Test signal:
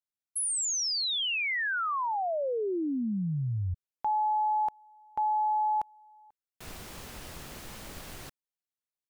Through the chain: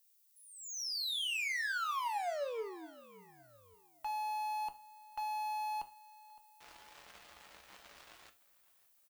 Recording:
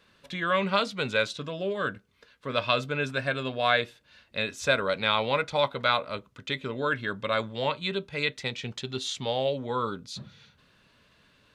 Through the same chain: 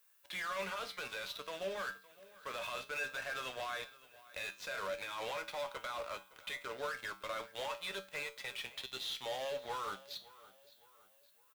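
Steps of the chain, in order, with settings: three-band isolator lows -22 dB, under 550 Hz, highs -19 dB, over 4.5 kHz; in parallel at -9.5 dB: fuzz box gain 40 dB, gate -46 dBFS; on the sum: added noise violet -54 dBFS; peak limiter -18.5 dBFS; feedback comb 64 Hz, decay 0.31 s, harmonics odd, mix 70%; on a send: feedback delay 563 ms, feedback 43%, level -20 dB; on the sum: trim -8.5 dB

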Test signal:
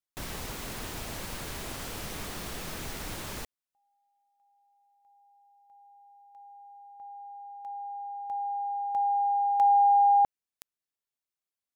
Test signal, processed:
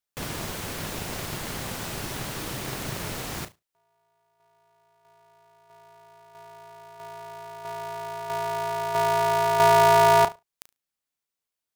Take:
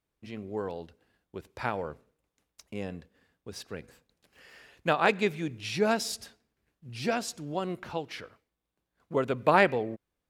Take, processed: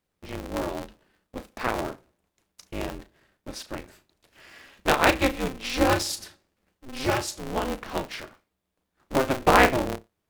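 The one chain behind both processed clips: flutter echo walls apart 6.1 m, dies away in 0.2 s; polarity switched at an audio rate 130 Hz; trim +4 dB

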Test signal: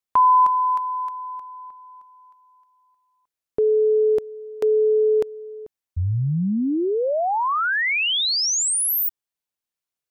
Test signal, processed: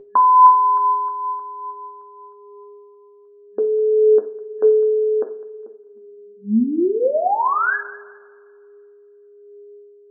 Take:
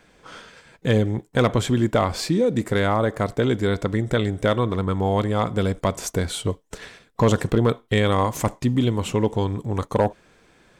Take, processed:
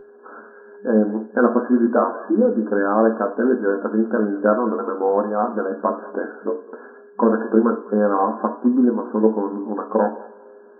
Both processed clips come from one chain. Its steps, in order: FFT band-pass 200–1700 Hz; whistle 410 Hz -40 dBFS; two-slope reverb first 0.42 s, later 2 s, from -21 dB, DRR 5.5 dB; flange 0.57 Hz, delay 7.7 ms, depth 2.2 ms, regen +49%; on a send: thinning echo 204 ms, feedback 26%, high-pass 710 Hz, level -18 dB; on the sum: trim +6 dB

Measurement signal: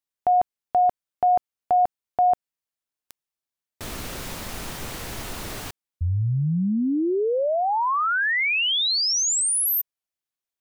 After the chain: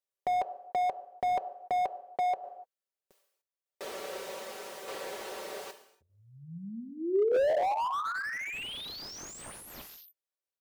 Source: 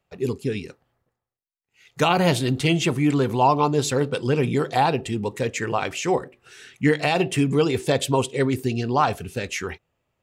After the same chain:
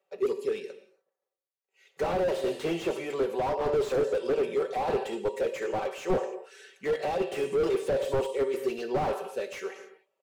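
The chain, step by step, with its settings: resonant high-pass 480 Hz, resonance Q 3.8; comb 5.2 ms, depth 65%; gated-style reverb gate 320 ms falling, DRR 8.5 dB; tremolo saw down 0.82 Hz, depth 50%; slew-rate limiter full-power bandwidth 77 Hz; trim -7 dB

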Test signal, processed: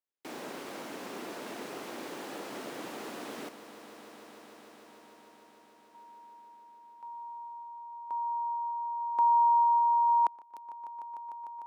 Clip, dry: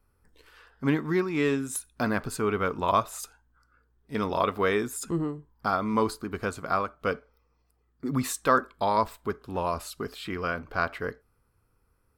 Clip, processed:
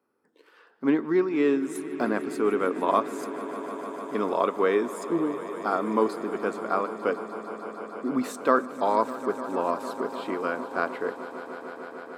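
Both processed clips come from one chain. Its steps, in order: high-pass 270 Hz 24 dB/octave; tilt EQ -3 dB/octave; echo with a slow build-up 150 ms, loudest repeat 5, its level -17 dB

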